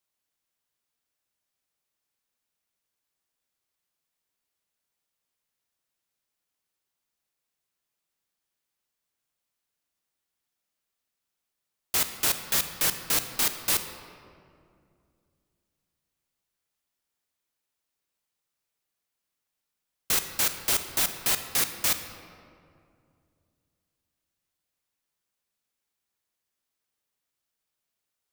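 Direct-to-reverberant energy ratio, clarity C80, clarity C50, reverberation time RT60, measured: 8.0 dB, 10.0 dB, 9.0 dB, 2.4 s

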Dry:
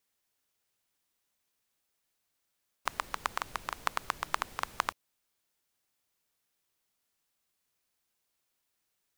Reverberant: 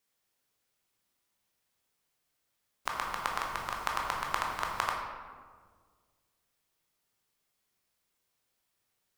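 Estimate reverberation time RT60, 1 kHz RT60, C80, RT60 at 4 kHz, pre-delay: 1.7 s, 1.5 s, 3.5 dB, 0.85 s, 14 ms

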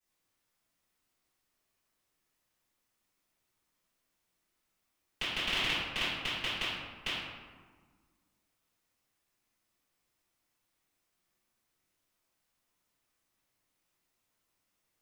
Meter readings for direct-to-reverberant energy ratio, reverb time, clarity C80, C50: -13.5 dB, 1.5 s, 1.5 dB, -1.5 dB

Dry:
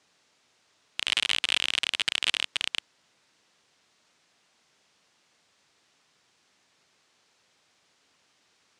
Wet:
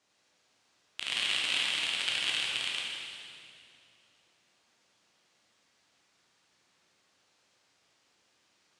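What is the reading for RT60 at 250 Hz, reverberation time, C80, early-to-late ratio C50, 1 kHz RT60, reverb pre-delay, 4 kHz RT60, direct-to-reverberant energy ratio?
3.1 s, 2.5 s, 0.0 dB, -1.5 dB, 2.3 s, 12 ms, 2.2 s, -4.5 dB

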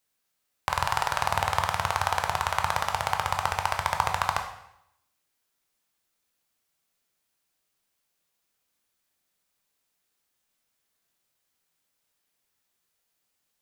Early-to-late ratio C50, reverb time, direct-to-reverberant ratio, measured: 7.5 dB, 0.80 s, 3.5 dB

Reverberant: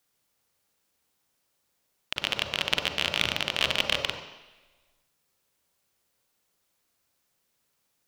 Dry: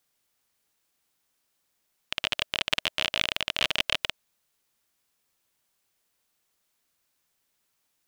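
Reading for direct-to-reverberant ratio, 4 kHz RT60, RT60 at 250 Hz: 4.0 dB, 1.3 s, 1.0 s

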